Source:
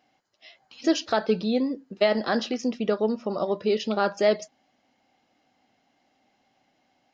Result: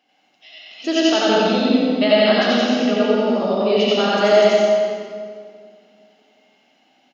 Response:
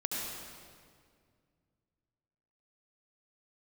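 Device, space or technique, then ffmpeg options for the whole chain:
PA in a hall: -filter_complex "[0:a]asettb=1/sr,asplit=3[a][b][c];[a]atrim=end=2.444[d];[b]atrim=start=2.44:end=3.52,asetpts=PTS-STARTPTS,afade=t=in:d=0.004:c=qsin,afade=t=out:st=1.076:d=0.004:c=qsin,lowpass=6.4k[e];[c]atrim=start=3.516[f];[d][e]acrossfade=d=0.004:c1=hsin:c2=qsin[g];[g][f]acrossfade=d=0.004:c1=qsin:c2=hsin,highpass=f=180:w=0.5412,highpass=f=180:w=1.3066,equalizer=f=2.9k:t=o:w=0.66:g=8,aecho=1:1:89:0.447[h];[1:a]atrim=start_sample=2205[i];[h][i]afir=irnorm=-1:irlink=0,aecho=1:1:37.9|90.38:0.316|0.891"

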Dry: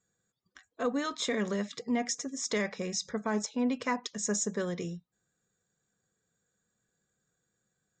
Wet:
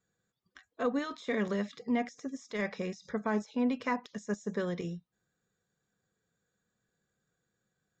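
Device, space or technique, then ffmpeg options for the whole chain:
de-esser from a sidechain: -filter_complex "[0:a]lowpass=5.1k,asplit=2[a][b];[b]highpass=f=4.4k:w=0.5412,highpass=f=4.4k:w=1.3066,apad=whole_len=352816[c];[a][c]sidechaincompress=threshold=-50dB:ratio=12:attack=0.78:release=40"

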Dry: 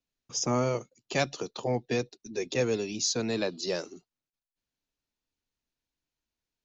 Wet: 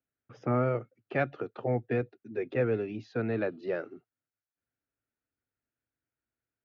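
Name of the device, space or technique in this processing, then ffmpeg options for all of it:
bass cabinet: -af "highpass=72,equalizer=f=110:t=q:w=4:g=6,equalizer=f=180:t=q:w=4:g=-6,equalizer=f=1k:t=q:w=4:g=-10,equalizer=f=1.4k:t=q:w=4:g=6,lowpass=f=2.1k:w=0.5412,lowpass=f=2.1k:w=1.3066"

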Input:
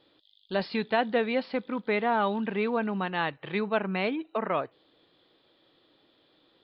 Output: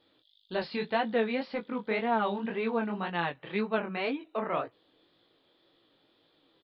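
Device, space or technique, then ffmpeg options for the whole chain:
double-tracked vocal: -filter_complex "[0:a]asplit=2[a][b];[b]adelay=18,volume=-14dB[c];[a][c]amix=inputs=2:normalize=0,flanger=delay=17:depth=8:speed=1.9"

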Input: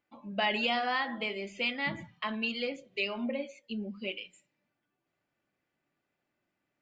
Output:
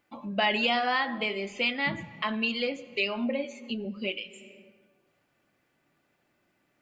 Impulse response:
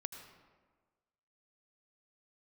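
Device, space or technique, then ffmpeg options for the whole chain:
ducked reverb: -filter_complex "[0:a]asplit=3[a][b][c];[1:a]atrim=start_sample=2205[d];[b][d]afir=irnorm=-1:irlink=0[e];[c]apad=whole_len=300553[f];[e][f]sidechaincompress=threshold=-50dB:ratio=8:attack=34:release=298,volume=5dB[g];[a][g]amix=inputs=2:normalize=0,asettb=1/sr,asplit=3[h][i][j];[h]atrim=end=3.434[k];[i]atrim=start=3.43:end=3.85,asetpts=PTS-STARTPTS,afade=t=in:d=0.004:c=qsin,afade=t=out:st=0.416:d=0.004:c=qsin,asplit=2[l][m];[m]adelay=12,volume=-5dB[n];[l][n]amix=inputs=2:normalize=0,atrim=end_sample=18522[o];[j]atrim=start=3.846[p];[k][o]acrossfade=d=0.004:c1=hsin:c2=qsin[q];[q][p]acrossfade=d=0.004:c1=qsin:c2=hsin,volume=3dB"

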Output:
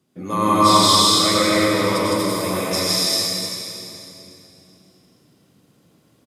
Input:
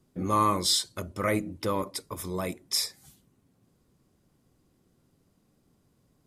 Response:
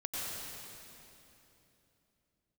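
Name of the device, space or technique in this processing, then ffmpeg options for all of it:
stadium PA: -filter_complex "[0:a]highpass=130,equalizer=f=3k:t=o:w=1.4:g=5,aecho=1:1:160.3|242:0.891|0.794[a];[1:a]atrim=start_sample=2205[b];[a][b]afir=irnorm=-1:irlink=0,volume=3.5dB"

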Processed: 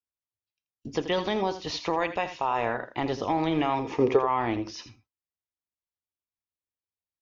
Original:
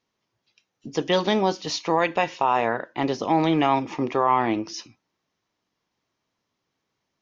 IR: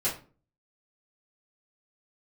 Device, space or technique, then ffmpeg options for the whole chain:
car stereo with a boomy subwoofer: -filter_complex "[0:a]acrossover=split=4700[a][b];[b]acompressor=threshold=-48dB:ratio=4:attack=1:release=60[c];[a][c]amix=inputs=2:normalize=0,lowshelf=f=110:t=q:w=1.5:g=11.5,alimiter=limit=-16dB:level=0:latency=1:release=320,agate=range=-28dB:threshold=-54dB:ratio=16:detection=peak,asettb=1/sr,asplit=3[d][e][f];[d]atrim=end=3.794[g];[e]atrim=start=3.79:end=4.19,asetpts=PTS-STARTPTS,afade=t=in:d=0.004:c=qsin,afade=t=out:st=0.396:d=0.004:c=qsin,equalizer=f=440:w=4.1:g=14.5[h];[f]atrim=start=4.186[i];[g][h]acrossfade=d=0.004:c1=hsin:c2=qsin[j];[j][i]acrossfade=d=0.004:c1=qsin:c2=hsin,aecho=1:1:82:0.251"

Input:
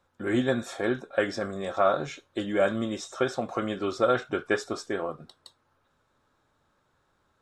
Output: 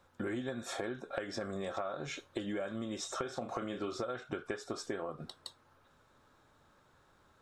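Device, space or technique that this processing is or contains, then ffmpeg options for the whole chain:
serial compression, peaks first: -filter_complex "[0:a]asettb=1/sr,asplit=3[a][b][c];[a]atrim=end=3.184[d];[b]atrim=start=3.18:end=4.05,asetpts=PTS-STARTPTS,afade=t=in:d=0.004:c=qsin,afade=t=out:st=0.866:d=0.004:c=qsin,asplit=2[e][f];[f]adelay=34,volume=-8.5dB[g];[e][g]amix=inputs=2:normalize=0,atrim=end_sample=38367[h];[c]atrim=start=4.046[i];[d][h]acrossfade=d=0.004:c1=hsin:c2=qsin[j];[j][i]acrossfade=d=0.004:c1=qsin:c2=hsin,acompressor=threshold=-33dB:ratio=6,acompressor=threshold=-41dB:ratio=2.5,volume=4dB"

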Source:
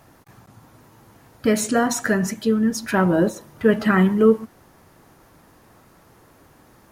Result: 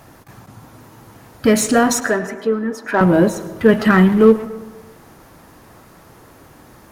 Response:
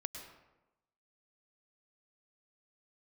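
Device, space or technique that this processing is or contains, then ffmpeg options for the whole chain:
saturated reverb return: -filter_complex "[0:a]asettb=1/sr,asplit=3[a][b][c];[a]atrim=end=2.004[d];[b]atrim=start=2:end=3.01,asetpts=PTS-STARTPTS,afade=t=in:d=0.004:c=qsin,afade=t=out:st=1.006:d=0.004:c=qsin,acrossover=split=290 2000:gain=0.0891 1 0.141[e][f][g];[e][f][g]amix=inputs=3:normalize=0[h];[c]atrim=start=3.006[i];[d][h]acrossfade=d=0.004:c1=hsin:c2=qsin[j];[j][i]acrossfade=d=0.004:c1=qsin:c2=hsin,asplit=2[k][l];[1:a]atrim=start_sample=2205[m];[l][m]afir=irnorm=-1:irlink=0,asoftclip=type=tanh:threshold=-24.5dB,volume=-2.5dB[n];[k][n]amix=inputs=2:normalize=0,volume=3.5dB"

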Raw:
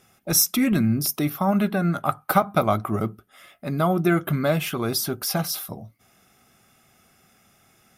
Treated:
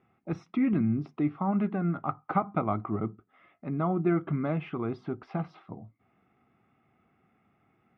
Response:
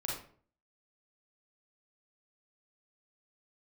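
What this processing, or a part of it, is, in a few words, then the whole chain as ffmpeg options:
bass cabinet: -af "highpass=75,equalizer=f=300:t=q:w=4:g=4,equalizer=f=580:t=q:w=4:g=-7,equalizer=f=1.6k:t=q:w=4:g=-9,lowpass=f=2.1k:w=0.5412,lowpass=f=2.1k:w=1.3066,volume=-6dB"

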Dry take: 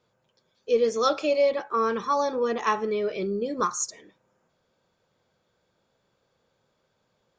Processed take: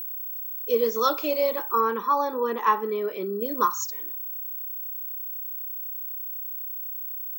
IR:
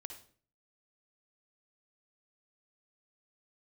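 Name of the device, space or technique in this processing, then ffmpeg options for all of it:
old television with a line whistle: -filter_complex "[0:a]highpass=f=210:w=0.5412,highpass=f=210:w=1.3066,equalizer=f=680:t=q:w=4:g=-10,equalizer=f=980:t=q:w=4:g=9,equalizer=f=2.4k:t=q:w=4:g=-4,lowpass=f=6.6k:w=0.5412,lowpass=f=6.6k:w=1.3066,aeval=exprs='val(0)+0.0282*sin(2*PI*15734*n/s)':c=same,asettb=1/sr,asplit=3[a][b][c];[a]atrim=end=1.804[d];[b]atrim=start=1.8:end=3.41,asetpts=PTS-STARTPTS,afade=t=in:d=0.004:c=qsin,afade=t=out:st=1.606:d=0.004:c=qsin,bass=f=250:g=-1,treble=f=4k:g=-11[e];[c]atrim=start=3.406[f];[d][e]acrossfade=d=0.004:c1=hsin:c2=qsin[g];[g][f]acrossfade=d=0.004:c1=qsin:c2=hsin"

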